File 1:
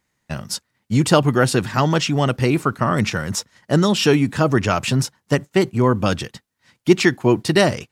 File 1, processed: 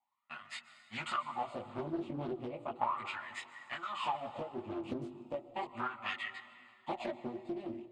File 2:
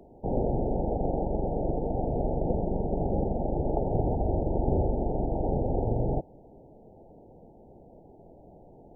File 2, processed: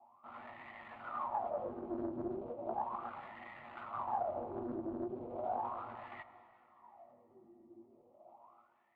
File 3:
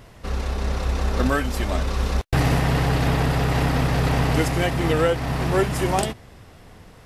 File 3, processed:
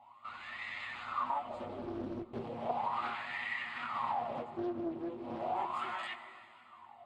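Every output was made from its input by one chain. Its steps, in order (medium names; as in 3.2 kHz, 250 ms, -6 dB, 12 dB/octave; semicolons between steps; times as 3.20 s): comb filter that takes the minimum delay 8.4 ms; wah-wah 0.36 Hz 330–1900 Hz, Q 13; treble shelf 2.3 kHz +7.5 dB; compression 12:1, threshold -40 dBFS; steep low-pass 8 kHz 36 dB/octave; treble shelf 4.9 kHz +10.5 dB; plate-style reverb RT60 2.6 s, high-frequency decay 0.8×, pre-delay 115 ms, DRR 13 dB; chorus voices 6, 0.68 Hz, delay 19 ms, depth 1.8 ms; level rider gain up to 3 dB; static phaser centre 1.6 kHz, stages 6; small resonant body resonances 240/380 Hz, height 9 dB, ringing for 45 ms; loudspeaker Doppler distortion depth 0.54 ms; trim +9.5 dB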